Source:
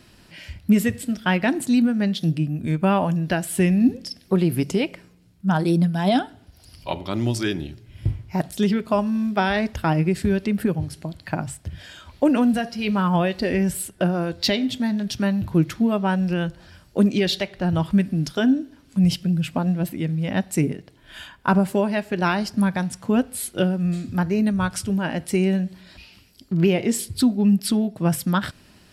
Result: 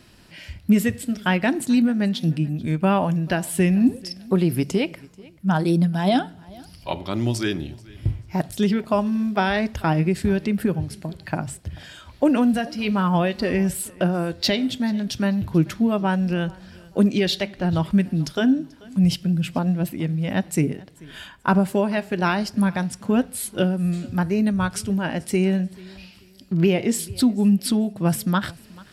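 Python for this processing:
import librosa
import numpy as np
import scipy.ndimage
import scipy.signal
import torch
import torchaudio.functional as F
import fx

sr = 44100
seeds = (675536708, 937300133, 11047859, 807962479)

y = fx.echo_feedback(x, sr, ms=437, feedback_pct=28, wet_db=-23.5)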